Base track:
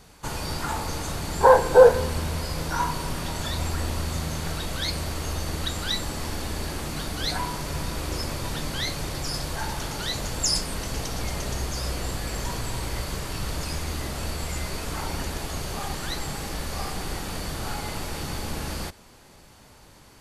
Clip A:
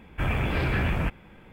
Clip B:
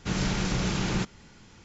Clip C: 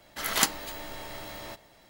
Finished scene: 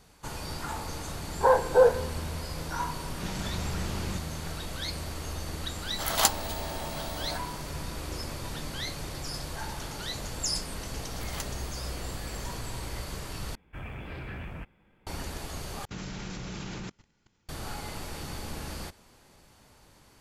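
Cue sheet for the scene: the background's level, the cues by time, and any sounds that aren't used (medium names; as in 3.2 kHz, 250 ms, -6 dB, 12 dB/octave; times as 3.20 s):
base track -6.5 dB
3.14 s: add B -9.5 dB
5.82 s: add C -6 dB + FFT filter 340 Hz 0 dB, 700 Hz +13 dB, 2 kHz +1 dB, 3.5 kHz +7 dB
10.97 s: add C -16 dB
13.55 s: replace with A -14 dB
15.85 s: replace with B -4 dB + level held to a coarse grid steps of 17 dB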